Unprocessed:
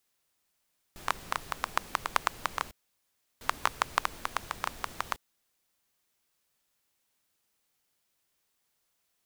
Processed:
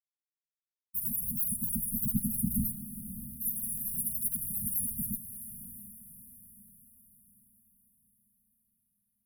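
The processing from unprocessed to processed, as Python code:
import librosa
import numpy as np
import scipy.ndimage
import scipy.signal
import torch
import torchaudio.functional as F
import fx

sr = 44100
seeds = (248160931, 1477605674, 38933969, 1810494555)

p1 = fx.octave_mirror(x, sr, pivot_hz=530.0)
p2 = fx.filter_lfo_highpass(p1, sr, shape='saw_down', hz=0.3, low_hz=330.0, high_hz=4700.0, q=4.5)
p3 = fx.fuzz(p2, sr, gain_db=53.0, gate_db=-59.0)
p4 = p2 + F.gain(torch.from_numpy(p3), -7.0).numpy()
p5 = fx.brickwall_bandstop(p4, sr, low_hz=240.0, high_hz=9400.0)
p6 = p5 + fx.echo_diffused(p5, sr, ms=629, feedback_pct=46, wet_db=-11.5, dry=0)
y = F.gain(torch.from_numpy(p6), 3.0).numpy()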